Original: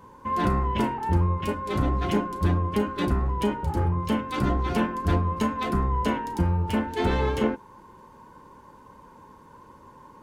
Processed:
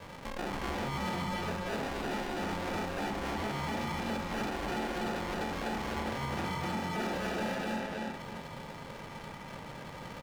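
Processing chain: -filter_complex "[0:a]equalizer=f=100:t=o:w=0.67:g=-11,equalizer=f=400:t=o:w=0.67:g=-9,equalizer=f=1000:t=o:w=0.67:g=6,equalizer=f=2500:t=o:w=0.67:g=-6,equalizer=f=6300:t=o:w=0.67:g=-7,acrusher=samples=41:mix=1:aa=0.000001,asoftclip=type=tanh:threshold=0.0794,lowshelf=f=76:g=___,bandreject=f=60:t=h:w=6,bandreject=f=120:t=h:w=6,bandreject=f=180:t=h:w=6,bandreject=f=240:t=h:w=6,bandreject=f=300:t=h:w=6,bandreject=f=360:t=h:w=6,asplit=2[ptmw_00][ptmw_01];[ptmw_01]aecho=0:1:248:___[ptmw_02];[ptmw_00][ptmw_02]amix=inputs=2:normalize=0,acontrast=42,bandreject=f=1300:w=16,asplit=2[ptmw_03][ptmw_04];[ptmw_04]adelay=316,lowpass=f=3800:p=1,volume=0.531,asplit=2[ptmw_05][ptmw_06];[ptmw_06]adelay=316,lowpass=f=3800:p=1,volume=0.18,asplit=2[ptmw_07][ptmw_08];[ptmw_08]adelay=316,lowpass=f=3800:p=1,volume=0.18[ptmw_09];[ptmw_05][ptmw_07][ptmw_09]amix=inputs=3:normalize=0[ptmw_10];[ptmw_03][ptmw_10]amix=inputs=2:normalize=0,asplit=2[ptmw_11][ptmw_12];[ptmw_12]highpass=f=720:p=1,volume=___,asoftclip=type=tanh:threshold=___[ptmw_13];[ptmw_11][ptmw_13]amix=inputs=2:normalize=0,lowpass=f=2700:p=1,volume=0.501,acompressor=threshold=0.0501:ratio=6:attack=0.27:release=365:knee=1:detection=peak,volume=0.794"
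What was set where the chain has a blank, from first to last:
-11.5, 0.596, 5.62, 0.299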